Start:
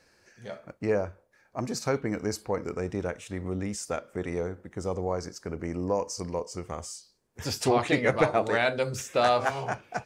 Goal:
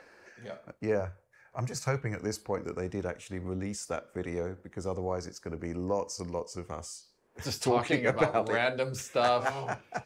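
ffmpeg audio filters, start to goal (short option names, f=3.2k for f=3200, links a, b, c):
-filter_complex "[0:a]asettb=1/sr,asplit=3[a][b][c];[a]atrim=end=1.004[d];[b]atrim=start=1:end=2.2,asetpts=PTS-STARTPTS,afade=t=in:d=0.004:c=qsin,afade=t=out:st=1.196:d=0.004:c=qsin,equalizer=f=125:t=o:w=1:g=10,equalizer=f=250:t=o:w=1:g=-12,equalizer=f=2k:t=o:w=1:g=4,equalizer=f=4k:t=o:w=1:g=-4,equalizer=f=8k:t=o:w=1:g=3[e];[c]atrim=start=2.196[f];[d][e]acrossfade=d=0.004:c1=hsin:c2=qsin[g];[g][f]acrossfade=d=0.004:c1=qsin:c2=hsin,acrossover=split=270|2500[h][i][j];[i]acompressor=mode=upward:threshold=-42dB:ratio=2.5[k];[h][k][j]amix=inputs=3:normalize=0,volume=-3dB"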